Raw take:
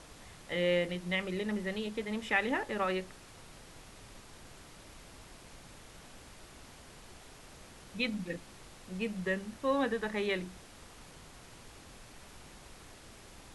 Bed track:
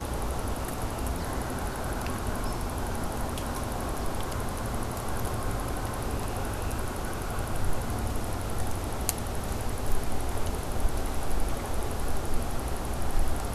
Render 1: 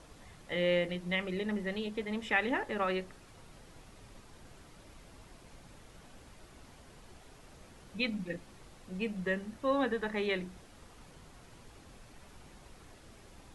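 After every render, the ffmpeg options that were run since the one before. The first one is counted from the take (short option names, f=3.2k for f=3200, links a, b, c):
-af "afftdn=nr=6:nf=-54"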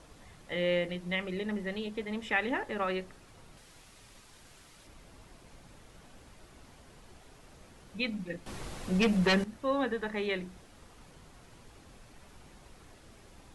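-filter_complex "[0:a]asettb=1/sr,asplit=3[a][b][c];[a]atrim=end=3.574[d];[b]atrim=start=3.57:end=4.87,asetpts=PTS-STARTPTS,afade=t=in:d=0.004:c=qsin,afade=t=out:st=1.296:d=0.004:c=qsin,tiltshelf=f=1.3k:g=-5[e];[c]atrim=start=4.866[f];[d][e]acrossfade=d=0.004:c1=hsin:c2=qsin[g];[g][f]acrossfade=d=0.004:c1=qsin:c2=hsin,asettb=1/sr,asplit=3[h][i][j];[h]atrim=end=8.464[k];[i]atrim=start=8.46:end=9.44,asetpts=PTS-STARTPTS,afade=t=in:d=0.004:c=qsin,afade=t=out:st=0.976:d=0.004:c=qsin,aeval=exprs='0.0944*sin(PI/2*2.82*val(0)/0.0944)':c=same[l];[j]atrim=start=9.436[m];[k][l]acrossfade=d=0.004:c1=hsin:c2=qsin[n];[n][m]acrossfade=d=0.004:c1=qsin:c2=hsin"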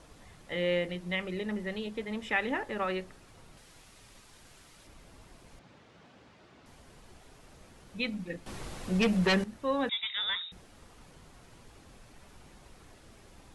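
-filter_complex "[0:a]asettb=1/sr,asplit=3[a][b][c];[a]atrim=end=5.594[d];[b]atrim=start=5.59:end=6.66,asetpts=PTS-STARTPTS,afade=t=in:d=0.004:c=qsin,afade=t=out:st=1.066:d=0.004:c=qsin,highpass=120,lowpass=4.3k[e];[c]atrim=start=6.656[f];[d][e]acrossfade=d=0.004:c1=hsin:c2=qsin[g];[g][f]acrossfade=d=0.004:c1=qsin:c2=hsin,asettb=1/sr,asplit=3[h][i][j];[h]atrim=end=9.894[k];[i]atrim=start=9.89:end=10.52,asetpts=PTS-STARTPTS,afade=t=in:d=0.004:c=qsin,afade=t=out:st=0.626:d=0.004:c=qsin,lowpass=f=3.3k:t=q:w=0.5098,lowpass=f=3.3k:t=q:w=0.6013,lowpass=f=3.3k:t=q:w=0.9,lowpass=f=3.3k:t=q:w=2.563,afreqshift=-3900[l];[j]atrim=start=10.516[m];[k][l]acrossfade=d=0.004:c1=hsin:c2=qsin[n];[n][m]acrossfade=d=0.004:c1=qsin:c2=hsin"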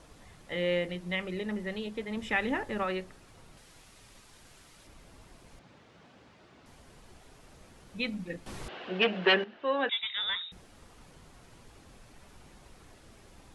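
-filter_complex "[0:a]asettb=1/sr,asplit=3[a][b][c];[a]atrim=end=2.174[d];[b]atrim=start=2.17:end=2.83,asetpts=PTS-STARTPTS,afade=t=in:d=0.004:c=qsin,afade=t=out:st=0.656:d=0.004:c=qsin,bass=f=250:g=6,treble=f=4k:g=2[e];[c]atrim=start=2.826[f];[d][e]acrossfade=d=0.004:c1=hsin:c2=qsin[g];[g][f]acrossfade=d=0.004:c1=qsin:c2=hsin,asettb=1/sr,asplit=3[h][i][j];[h]atrim=end=8.684[k];[i]atrim=start=8.68:end=9.99,asetpts=PTS-STARTPTS,afade=t=in:d=0.004:c=qsin,afade=t=out:st=1.306:d=0.004:c=qsin,highpass=340,equalizer=f=390:t=q:w=4:g=6,equalizer=f=690:t=q:w=4:g=5,equalizer=f=1.6k:t=q:w=4:g=7,equalizer=f=2.9k:t=q:w=4:g=9,lowpass=f=3.8k:w=0.5412,lowpass=f=3.8k:w=1.3066[l];[j]atrim=start=9.986[m];[k][l]acrossfade=d=0.004:c1=hsin:c2=qsin[n];[n][m]acrossfade=d=0.004:c1=qsin:c2=hsin"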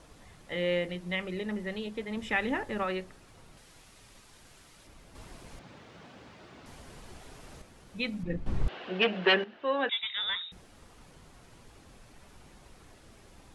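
-filter_complex "[0:a]asettb=1/sr,asplit=3[a][b][c];[a]atrim=end=5.154[d];[b]atrim=start=5.15:end=7.62,asetpts=PTS-STARTPTS,afade=t=in:d=0.004:c=qsin,afade=t=out:st=2.466:d=0.004:c=qsin,acontrast=50[e];[c]atrim=start=7.616[f];[d][e]acrossfade=d=0.004:c1=hsin:c2=qsin[g];[g][f]acrossfade=d=0.004:c1=qsin:c2=hsin,asettb=1/sr,asplit=3[h][i][j];[h]atrim=end=8.234[k];[i]atrim=start=8.23:end=8.68,asetpts=PTS-STARTPTS,afade=t=in:d=0.004:c=qsin,afade=t=out:st=0.446:d=0.004:c=qsin,aemphasis=mode=reproduction:type=riaa[l];[j]atrim=start=8.676[m];[k][l]acrossfade=d=0.004:c1=hsin:c2=qsin[n];[n][m]acrossfade=d=0.004:c1=qsin:c2=hsin"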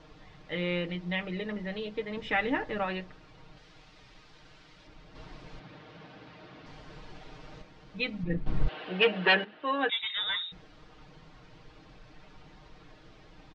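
-af "lowpass=f=4.9k:w=0.5412,lowpass=f=4.9k:w=1.3066,aecho=1:1:6.5:0.65"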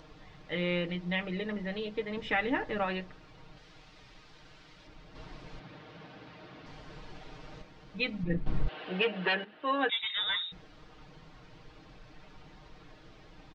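-af "acompressor=mode=upward:threshold=-53dB:ratio=2.5,alimiter=limit=-18dB:level=0:latency=1:release=379"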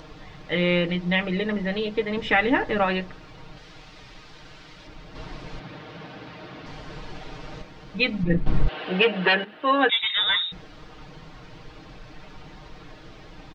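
-af "volume=9.5dB"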